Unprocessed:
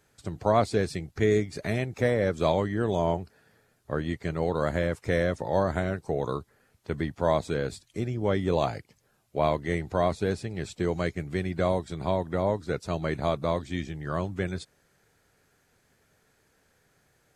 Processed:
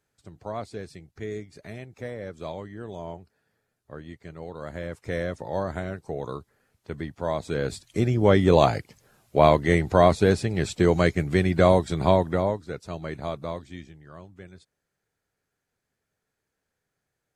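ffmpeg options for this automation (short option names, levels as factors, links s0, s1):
-af "volume=2.51,afade=t=in:st=4.59:d=0.58:silence=0.421697,afade=t=in:st=7.37:d=0.71:silence=0.266073,afade=t=out:st=12.11:d=0.51:silence=0.237137,afade=t=out:st=13.41:d=0.67:silence=0.298538"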